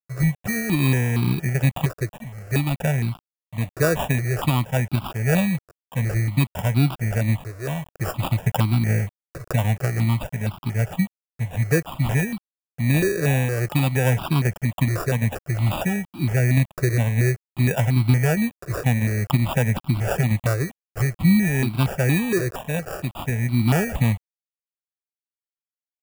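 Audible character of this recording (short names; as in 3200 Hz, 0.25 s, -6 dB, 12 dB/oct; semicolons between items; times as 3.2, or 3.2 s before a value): aliases and images of a low sample rate 2100 Hz, jitter 0%; tremolo triangle 2.5 Hz, depth 30%; a quantiser's noise floor 8-bit, dither none; notches that jump at a steady rate 4.3 Hz 870–1800 Hz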